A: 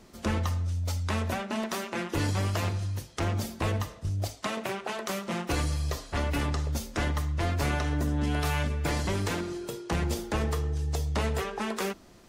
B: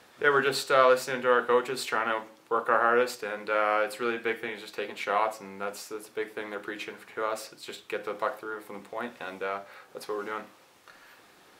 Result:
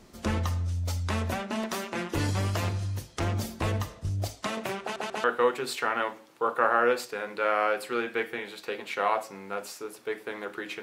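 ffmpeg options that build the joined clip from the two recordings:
-filter_complex "[0:a]apad=whole_dur=10.82,atrim=end=10.82,asplit=3[a][b][c];[a]atrim=end=4.962[d];[b]atrim=start=4.818:end=4.962[e];[c]atrim=start=4.818:end=4.962[f];[1:a]atrim=start=1.338:end=6.92[g];[d][e]acrossfade=d=0.004:c1=hsin:c2=hsin[h];[h][f]acrossfade=d=0.004:c1=hsin:c2=hsin[i];[i][g]acrossfade=d=0.004:c1=hsin:c2=hsin"

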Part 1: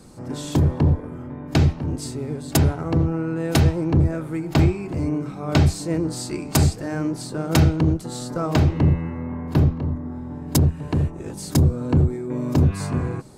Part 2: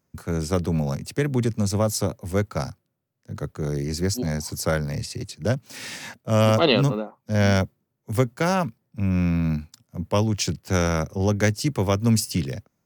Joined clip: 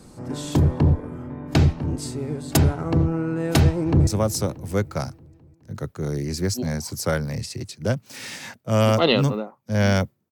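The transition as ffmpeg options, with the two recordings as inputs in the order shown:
-filter_complex "[0:a]apad=whole_dur=10.31,atrim=end=10.31,atrim=end=4.072[a];[1:a]atrim=start=1.668:end=7.91[b];[a][b]acrossfade=d=0.004:c1=hsin:c2=hsin,asplit=2[c][d];[d]afade=t=in:st=3.65:d=0.01,afade=t=out:st=4.07:d=0.01,aecho=0:1:210|420|630|840|1050|1260|1470|1680:0.149624|0.104736|0.0733155|0.0513209|0.0359246|0.0251472|0.0176031|0.0123221[e];[c][e]amix=inputs=2:normalize=0"

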